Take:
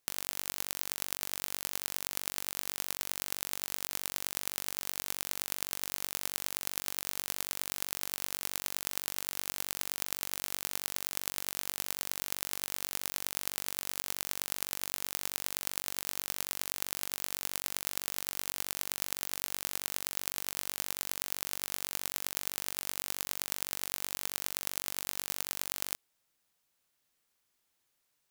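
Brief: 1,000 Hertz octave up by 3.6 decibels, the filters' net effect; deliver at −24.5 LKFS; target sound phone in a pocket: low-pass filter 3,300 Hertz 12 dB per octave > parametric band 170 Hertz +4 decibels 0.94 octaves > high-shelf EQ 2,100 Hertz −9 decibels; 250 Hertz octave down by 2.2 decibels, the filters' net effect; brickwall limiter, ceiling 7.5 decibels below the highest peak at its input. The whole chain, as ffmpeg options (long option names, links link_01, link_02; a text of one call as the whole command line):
ffmpeg -i in.wav -af "equalizer=frequency=250:width_type=o:gain=-6,equalizer=frequency=1000:width_type=o:gain=7,alimiter=limit=-11.5dB:level=0:latency=1,lowpass=3300,equalizer=frequency=170:width_type=o:width=0.94:gain=4,highshelf=frequency=2100:gain=-9,volume=25dB" out.wav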